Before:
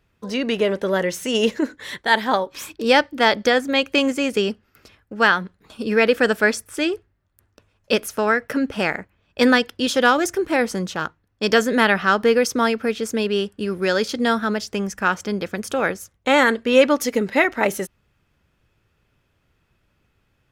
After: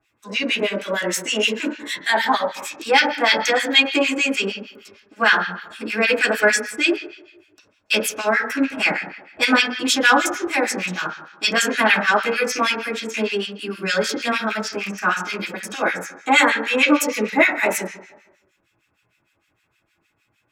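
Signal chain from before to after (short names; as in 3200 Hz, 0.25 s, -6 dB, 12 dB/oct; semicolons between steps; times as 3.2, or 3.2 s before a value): rattling part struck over -26 dBFS, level -18 dBFS; high shelf 4100 Hz +6 dB; reverb RT60 1.1 s, pre-delay 3 ms, DRR -5.5 dB; harmonic tremolo 6.5 Hz, depth 100%, crossover 1400 Hz; low shelf 150 Hz -11 dB; gain -1 dB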